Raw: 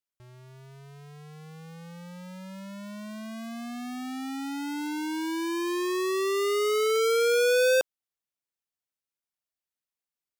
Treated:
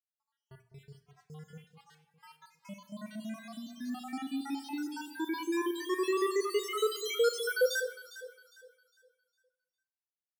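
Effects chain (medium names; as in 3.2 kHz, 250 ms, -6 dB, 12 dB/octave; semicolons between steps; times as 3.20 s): random holes in the spectrogram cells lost 73%; gate -57 dBFS, range -22 dB; hum notches 60/120/180/240/300 Hz; on a send: echo whose repeats swap between lows and highs 203 ms, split 860 Hz, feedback 56%, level -10 dB; on the sum: Schroeder reverb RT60 0.45 s, combs from 29 ms, DRR 12 dB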